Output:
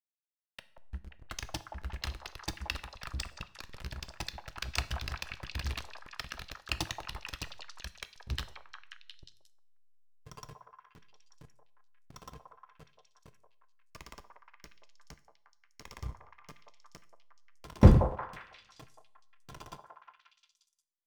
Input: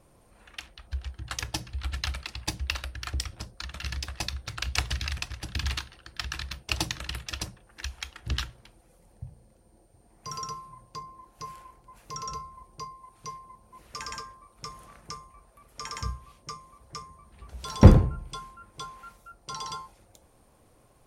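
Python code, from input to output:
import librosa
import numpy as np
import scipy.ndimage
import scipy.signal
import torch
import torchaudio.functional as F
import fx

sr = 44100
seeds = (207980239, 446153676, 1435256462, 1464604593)

y = fx.backlash(x, sr, play_db=-25.0)
y = fx.echo_stepped(y, sr, ms=178, hz=750.0, octaves=0.7, feedback_pct=70, wet_db=-1.0)
y = fx.rev_double_slope(y, sr, seeds[0], early_s=0.52, late_s=1.6, knee_db=-26, drr_db=12.5)
y = y * 10.0 ** (-4.5 / 20.0)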